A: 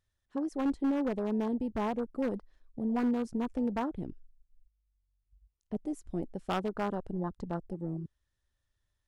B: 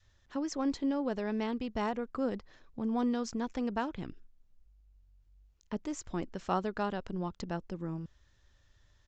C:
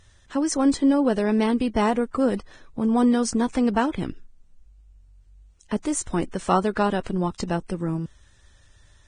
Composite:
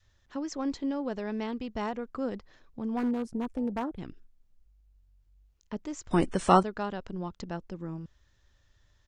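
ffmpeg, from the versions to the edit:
ffmpeg -i take0.wav -i take1.wav -i take2.wav -filter_complex "[1:a]asplit=3[link_01][link_02][link_03];[link_01]atrim=end=2.972[link_04];[0:a]atrim=start=2.968:end=3.982[link_05];[link_02]atrim=start=3.978:end=6.112[link_06];[2:a]atrim=start=6.108:end=6.632[link_07];[link_03]atrim=start=6.628[link_08];[link_04][link_05]acrossfade=duration=0.004:curve1=hsin:curve2=hsin[link_09];[link_09][link_06]acrossfade=duration=0.004:curve1=hsin:curve2=hsin[link_10];[link_10][link_07]acrossfade=duration=0.004:curve1=hsin:curve2=hsin[link_11];[link_11][link_08]acrossfade=duration=0.004:curve1=hsin:curve2=hsin" out.wav

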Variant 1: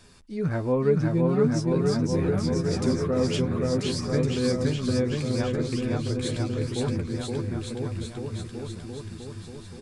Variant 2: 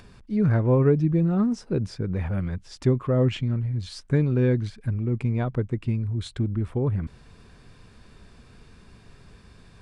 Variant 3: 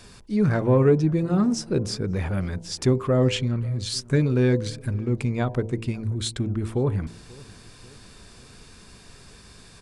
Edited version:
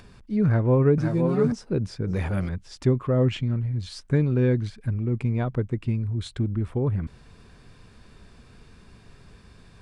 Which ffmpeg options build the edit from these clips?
ffmpeg -i take0.wav -i take1.wav -i take2.wav -filter_complex "[1:a]asplit=3[link_01][link_02][link_03];[link_01]atrim=end=0.982[link_04];[0:a]atrim=start=0.978:end=1.522[link_05];[link_02]atrim=start=1.518:end=2.072[link_06];[2:a]atrim=start=2.068:end=2.492[link_07];[link_03]atrim=start=2.488[link_08];[link_04][link_05]acrossfade=duration=0.004:curve1=hsin:curve2=hsin[link_09];[link_09][link_06]acrossfade=duration=0.004:curve1=hsin:curve2=hsin[link_10];[link_10][link_07]acrossfade=duration=0.004:curve1=hsin:curve2=hsin[link_11];[link_11][link_08]acrossfade=duration=0.004:curve1=hsin:curve2=hsin" out.wav

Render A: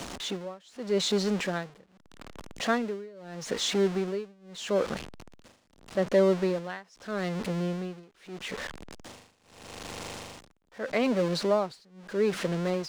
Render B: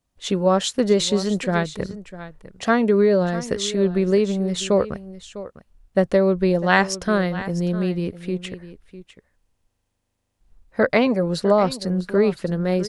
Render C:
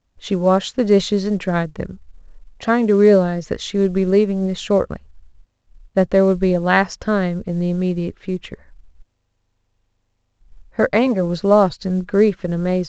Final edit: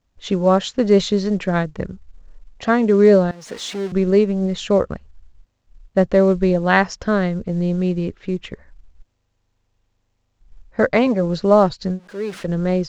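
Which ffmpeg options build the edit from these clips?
ffmpeg -i take0.wav -i take1.wav -i take2.wav -filter_complex "[0:a]asplit=2[link_01][link_02];[2:a]asplit=3[link_03][link_04][link_05];[link_03]atrim=end=3.312[link_06];[link_01]atrim=start=3.308:end=3.922[link_07];[link_04]atrim=start=3.918:end=12[link_08];[link_02]atrim=start=11.9:end=12.48[link_09];[link_05]atrim=start=12.38[link_10];[link_06][link_07]acrossfade=duration=0.004:curve1=hsin:curve2=hsin[link_11];[link_11][link_08]acrossfade=duration=0.004:curve1=hsin:curve2=hsin[link_12];[link_12][link_09]acrossfade=duration=0.1:curve1=tri:curve2=tri[link_13];[link_13][link_10]acrossfade=duration=0.1:curve1=tri:curve2=tri" out.wav

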